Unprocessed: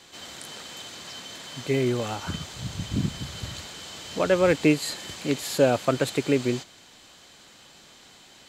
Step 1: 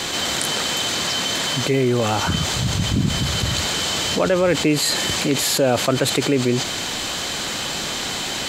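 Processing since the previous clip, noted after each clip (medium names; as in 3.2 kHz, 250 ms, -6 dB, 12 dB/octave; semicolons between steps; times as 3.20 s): level flattener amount 70%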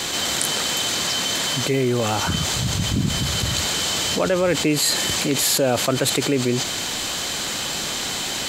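treble shelf 6.5 kHz +6.5 dB; trim -2 dB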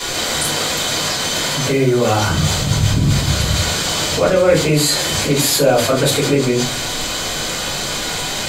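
simulated room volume 130 m³, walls furnished, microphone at 4.7 m; trim -5.5 dB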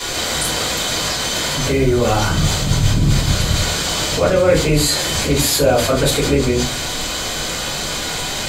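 octave divider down 2 oct, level -4 dB; trim -1 dB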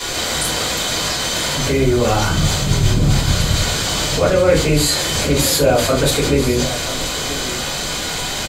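delay 983 ms -13.5 dB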